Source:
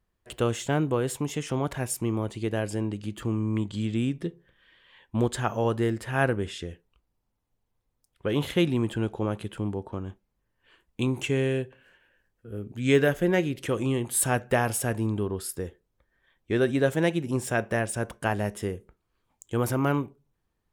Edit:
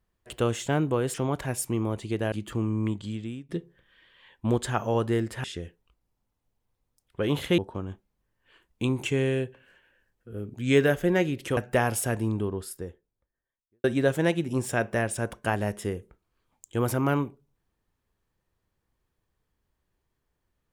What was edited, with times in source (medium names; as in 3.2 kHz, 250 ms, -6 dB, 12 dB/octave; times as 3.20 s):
1.14–1.46 s: delete
2.64–3.02 s: delete
3.53–4.19 s: fade out, to -20.5 dB
6.14–6.50 s: delete
8.64–9.76 s: delete
13.75–14.35 s: delete
14.97–16.62 s: studio fade out